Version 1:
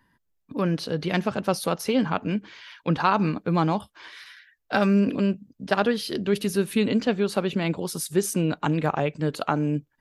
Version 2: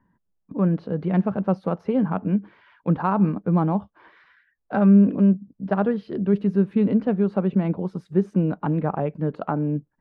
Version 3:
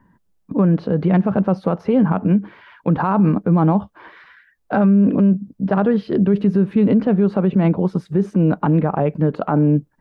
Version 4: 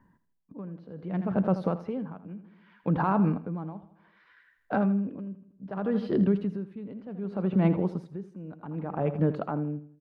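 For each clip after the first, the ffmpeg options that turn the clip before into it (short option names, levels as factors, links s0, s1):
-af "lowpass=1100,equalizer=f=190:w=5.3:g=8.5"
-af "alimiter=level_in=7.08:limit=0.891:release=50:level=0:latency=1,volume=0.447"
-filter_complex "[0:a]asplit=2[s0][s1];[s1]aecho=0:1:81|162|243|324|405:0.237|0.114|0.0546|0.0262|0.0126[s2];[s0][s2]amix=inputs=2:normalize=0,aeval=exprs='val(0)*pow(10,-19*(0.5-0.5*cos(2*PI*0.65*n/s))/20)':c=same,volume=0.447"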